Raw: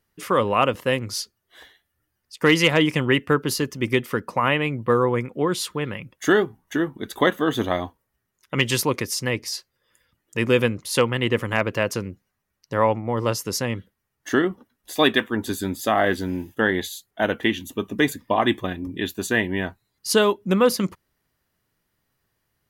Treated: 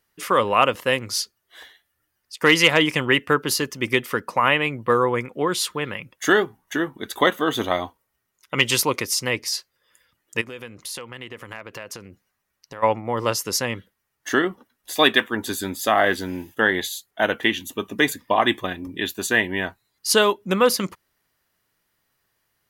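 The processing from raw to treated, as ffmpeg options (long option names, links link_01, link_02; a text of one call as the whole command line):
ffmpeg -i in.wav -filter_complex "[0:a]asettb=1/sr,asplit=3[link_01][link_02][link_03];[link_01]atrim=end=7.214[link_04];[link_02]atrim=start=7.21:end=9.3,asetpts=PTS-STARTPTS,afade=type=in:duration=0.004:curve=qsin,afade=type=out:start_time=2.086:duration=0.004:curve=qsin,bandreject=frequency=1700:width=12[link_05];[link_03]atrim=start=9.296[link_06];[link_04][link_05]acrossfade=duration=0.004:curve1=hsin:curve2=qsin[link_07];[link_07][link_06]acrossfade=duration=0.004:curve1=qsin:curve2=hsin,asplit=3[link_08][link_09][link_10];[link_08]afade=type=out:start_time=10.4:duration=0.02[link_11];[link_09]acompressor=threshold=-33dB:ratio=8:attack=3.2:release=140:knee=1:detection=peak,afade=type=in:start_time=10.4:duration=0.02,afade=type=out:start_time=12.82:duration=0.02[link_12];[link_10]afade=type=in:start_time=12.82:duration=0.02[link_13];[link_11][link_12][link_13]amix=inputs=3:normalize=0,lowshelf=frequency=410:gain=-9.5,volume=4dB" out.wav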